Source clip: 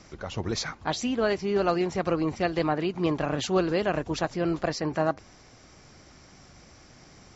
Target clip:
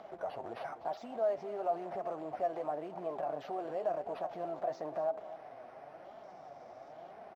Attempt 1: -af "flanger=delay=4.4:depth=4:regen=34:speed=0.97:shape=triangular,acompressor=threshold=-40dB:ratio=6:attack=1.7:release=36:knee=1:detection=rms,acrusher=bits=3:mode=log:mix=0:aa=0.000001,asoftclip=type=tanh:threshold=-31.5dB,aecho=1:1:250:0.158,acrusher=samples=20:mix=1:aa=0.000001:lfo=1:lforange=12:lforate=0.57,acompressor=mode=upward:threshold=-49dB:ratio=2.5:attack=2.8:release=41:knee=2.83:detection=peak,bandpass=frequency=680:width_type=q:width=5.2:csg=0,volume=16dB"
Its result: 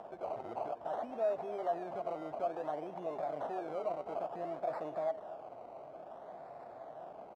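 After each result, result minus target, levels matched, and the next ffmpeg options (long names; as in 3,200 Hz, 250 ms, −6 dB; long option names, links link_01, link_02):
soft clipping: distortion +20 dB; sample-and-hold swept by an LFO: distortion +7 dB
-af "flanger=delay=4.4:depth=4:regen=34:speed=0.97:shape=triangular,acompressor=threshold=-40dB:ratio=6:attack=1.7:release=36:knee=1:detection=rms,acrusher=bits=3:mode=log:mix=0:aa=0.000001,asoftclip=type=tanh:threshold=-21dB,aecho=1:1:250:0.158,acrusher=samples=20:mix=1:aa=0.000001:lfo=1:lforange=12:lforate=0.57,acompressor=mode=upward:threshold=-49dB:ratio=2.5:attack=2.8:release=41:knee=2.83:detection=peak,bandpass=frequency=680:width_type=q:width=5.2:csg=0,volume=16dB"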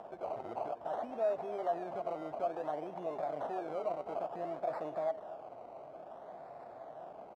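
sample-and-hold swept by an LFO: distortion +7 dB
-af "flanger=delay=4.4:depth=4:regen=34:speed=0.97:shape=triangular,acompressor=threshold=-40dB:ratio=6:attack=1.7:release=36:knee=1:detection=rms,acrusher=bits=3:mode=log:mix=0:aa=0.000001,asoftclip=type=tanh:threshold=-21dB,aecho=1:1:250:0.158,acrusher=samples=5:mix=1:aa=0.000001:lfo=1:lforange=3:lforate=0.57,acompressor=mode=upward:threshold=-49dB:ratio=2.5:attack=2.8:release=41:knee=2.83:detection=peak,bandpass=frequency=680:width_type=q:width=5.2:csg=0,volume=16dB"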